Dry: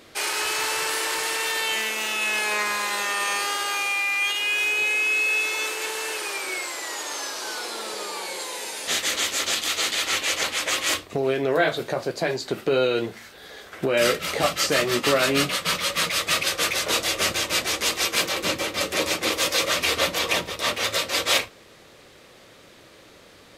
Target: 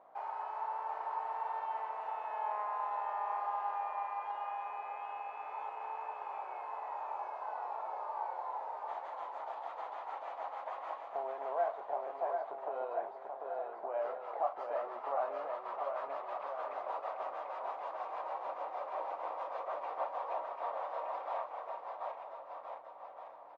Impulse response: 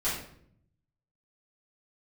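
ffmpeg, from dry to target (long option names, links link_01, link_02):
-filter_complex "[0:a]acompressor=threshold=-36dB:ratio=1.5,aeval=exprs='val(0)+0.00891*(sin(2*PI*60*n/s)+sin(2*PI*2*60*n/s)/2+sin(2*PI*3*60*n/s)/3+sin(2*PI*4*60*n/s)/4+sin(2*PI*5*60*n/s)/5)':channel_layout=same,asuperpass=centerf=820:order=4:qfactor=2.4,asplit=2[link_01][link_02];[link_02]aecho=0:1:740|1369|1904|2358|2744:0.631|0.398|0.251|0.158|0.1[link_03];[link_01][link_03]amix=inputs=2:normalize=0,volume=1.5dB"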